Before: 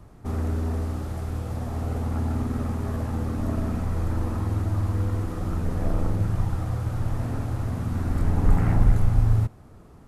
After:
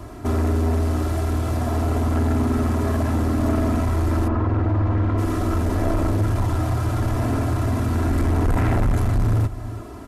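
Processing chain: HPF 93 Hz 6 dB/oct; comb 3 ms, depth 71%; on a send: echo 0.343 s -20.5 dB; on the sum: soft clip -24.5 dBFS, distortion -10 dB; 4.27–5.17 LPF 1900 Hz -> 2700 Hz 12 dB/oct; in parallel at 0 dB: compressor, threshold -39 dBFS, peak gain reduction 12 dB; on the sum: gain +7.5 dB

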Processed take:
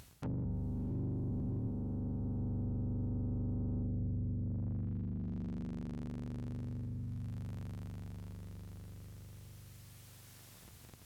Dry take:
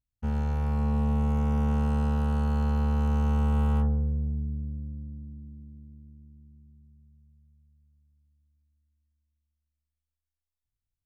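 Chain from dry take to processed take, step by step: cycle switcher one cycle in 3, inverted; HPF 85 Hz 12 dB/oct; treble ducked by the level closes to 310 Hz, closed at -29 dBFS; in parallel at -3 dB: upward compressor, threshold -33 dBFS; on the sum: limiter -25.5 dBFS, peak gain reduction 8.5 dB; reverse; compressor 4:1, threshold -43 dBFS, peak gain reduction 12.5 dB; reverse; diffused feedback echo 0.671 s, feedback 66%, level -14.5 dB; gain +5.5 dB

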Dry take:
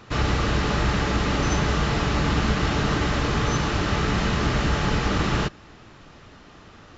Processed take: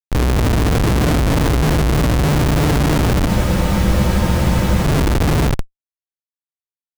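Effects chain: FDN reverb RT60 0.96 s, low-frequency decay 1.25×, high-frequency decay 0.85×, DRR -3 dB; Schmitt trigger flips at -15.5 dBFS; spectral freeze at 3.3, 1.53 s; gain +3.5 dB

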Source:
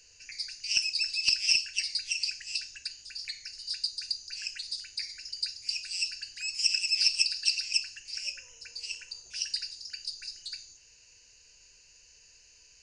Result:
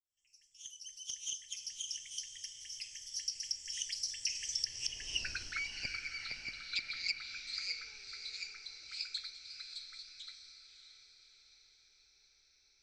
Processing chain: opening faded in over 2.40 s; Doppler pass-by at 5.25, 50 m/s, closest 8.2 m; treble ducked by the level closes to 1100 Hz, closed at -41 dBFS; on a send: diffused feedback echo 0.605 s, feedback 50%, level -9 dB; on the sum: gain +18 dB

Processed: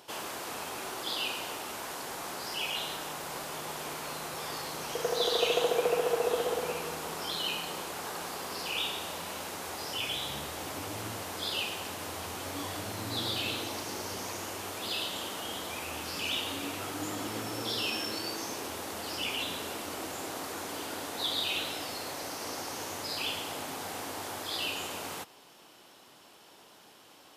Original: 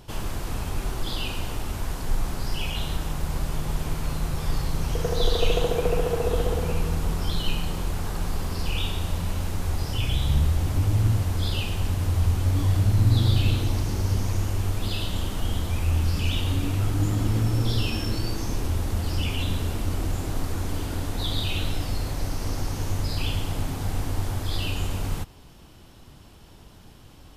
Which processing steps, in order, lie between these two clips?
HPF 440 Hz 12 dB/oct

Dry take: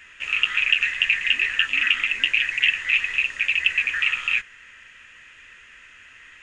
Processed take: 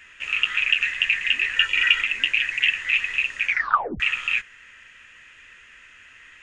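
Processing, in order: 1.56–2.02 comb 2.1 ms, depth 93%; 3.45 tape stop 0.55 s; gain -1 dB

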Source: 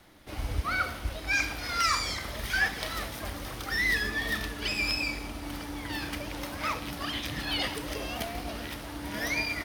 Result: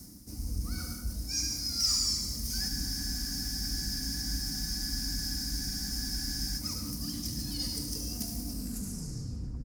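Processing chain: tape stop at the end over 1.16 s; EQ curve 240 Hz 0 dB, 560 Hz -21 dB, 3500 Hz -27 dB, 5100 Hz +3 dB; soft clip -25 dBFS, distortion -17 dB; comb 4.1 ms, depth 31%; thin delay 73 ms, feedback 62%, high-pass 2600 Hz, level -8.5 dB; on a send at -4 dB: reverb RT60 0.70 s, pre-delay 93 ms; on the sum: dynamic EQ 4300 Hz, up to +5 dB, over -46 dBFS, Q 0.89; HPF 44 Hz; reverse; upward compressor, threshold -31 dBFS; reverse; spectral freeze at 2.71, 3.88 s

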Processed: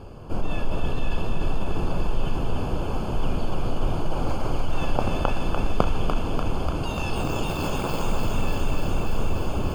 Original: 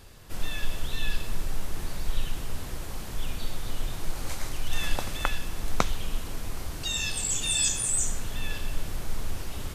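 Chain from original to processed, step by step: tracing distortion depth 0.2 ms; low shelf 93 Hz -8 dB; in parallel at 0 dB: negative-ratio compressor -33 dBFS; on the sum: running mean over 23 samples; thinning echo 0.294 s, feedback 84%, high-pass 610 Hz, level -4 dB; gain +7.5 dB

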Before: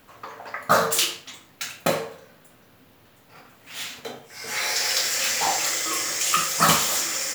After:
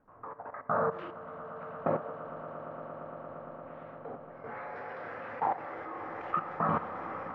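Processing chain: LPF 1300 Hz 24 dB/oct; notches 60/120/180/240/300/360/420/480/540 Hz; level quantiser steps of 14 dB; swelling echo 0.115 s, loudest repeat 8, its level -17.5 dB

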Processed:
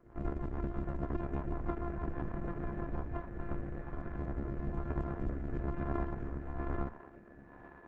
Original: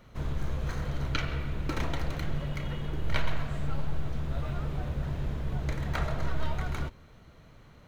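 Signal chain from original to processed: sample sorter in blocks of 128 samples; compressor 16:1, threshold -26 dBFS, peak gain reduction 7.5 dB; thinning echo 1.049 s, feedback 55%, high-pass 350 Hz, level -9 dB; rotary speaker horn 6.3 Hz, later 1.1 Hz, at 2.83; LPF 1600 Hz 24 dB/oct; gain -1 dB; Opus 10 kbps 48000 Hz

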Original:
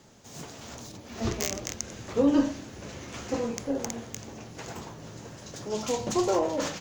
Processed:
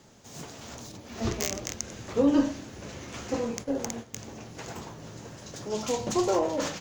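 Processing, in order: 3.45–4.14 gate -37 dBFS, range -9 dB

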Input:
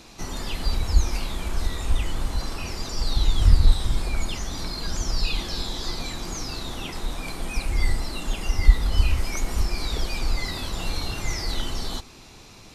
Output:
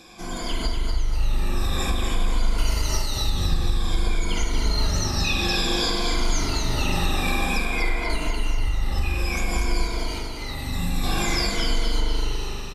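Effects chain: moving spectral ripple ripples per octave 1.8, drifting -0.54 Hz, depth 15 dB; AGC; 7.65–8.1 tone controls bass -12 dB, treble -15 dB; 10.55–11.04 spectral gain 300–6300 Hz -8 dB; spring tank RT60 1.1 s, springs 40 ms, chirp 65 ms, DRR -0.5 dB; compressor, threshold -17 dBFS, peak gain reduction 15.5 dB; 2.58–3.3 high shelf 5600 Hz +10.5 dB; 9.84–10.68 HPF 66 Hz; on a send: feedback echo 0.243 s, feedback 45%, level -5.5 dB; on the sum: gain -3 dB

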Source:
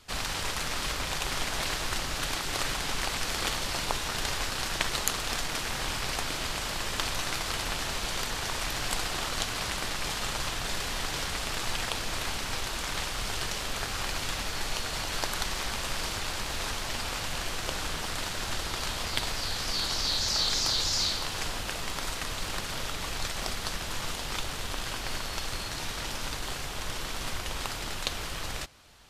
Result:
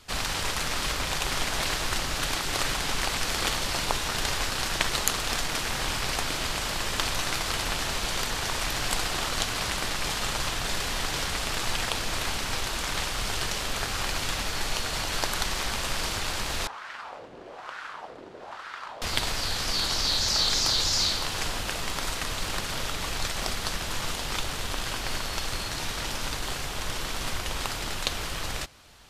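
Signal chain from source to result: 16.67–19.02 LFO band-pass sine 1.1 Hz 370–1500 Hz; gain +3 dB

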